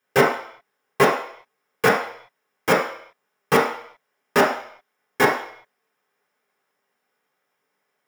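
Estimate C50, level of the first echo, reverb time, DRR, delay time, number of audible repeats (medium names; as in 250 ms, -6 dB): 4.5 dB, no echo, 0.60 s, -6.0 dB, no echo, no echo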